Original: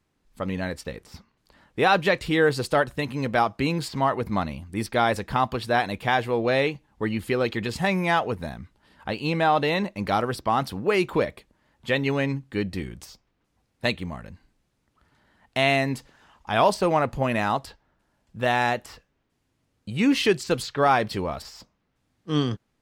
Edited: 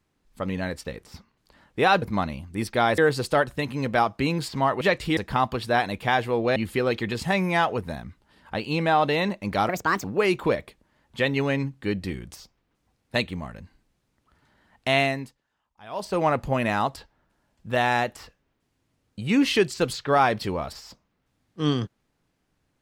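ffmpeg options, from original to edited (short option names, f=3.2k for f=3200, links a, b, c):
-filter_complex "[0:a]asplit=10[a][b][c][d][e][f][g][h][i][j];[a]atrim=end=2.022[k];[b]atrim=start=4.208:end=5.172[l];[c]atrim=start=2.378:end=4.212[m];[d]atrim=start=2.018:end=2.382[n];[e]atrim=start=5.168:end=6.562[o];[f]atrim=start=7.098:end=10.234[p];[g]atrim=start=10.23:end=10.74,asetpts=PTS-STARTPTS,asetrate=63504,aresample=44100[q];[h]atrim=start=10.736:end=16.05,asetpts=PTS-STARTPTS,afade=t=out:st=4.944:d=0.37:silence=0.0891251[r];[i]atrim=start=16.05:end=16.6,asetpts=PTS-STARTPTS,volume=-21dB[s];[j]atrim=start=16.6,asetpts=PTS-STARTPTS,afade=t=in:d=0.37:silence=0.0891251[t];[k][l]acrossfade=d=0.004:c1=hsin:c2=hsin[u];[u][m]acrossfade=d=0.004:c1=hsin:c2=hsin[v];[v][n]acrossfade=d=0.004:c1=hsin:c2=hsin[w];[w][o]acrossfade=d=0.004:c1=hsin:c2=hsin[x];[x][p]acrossfade=d=0.004:c1=hsin:c2=hsin[y];[y][q]acrossfade=d=0.004:c1=hsin:c2=hsin[z];[r][s][t]concat=n=3:v=0:a=1[aa];[z][aa]acrossfade=d=0.004:c1=hsin:c2=hsin"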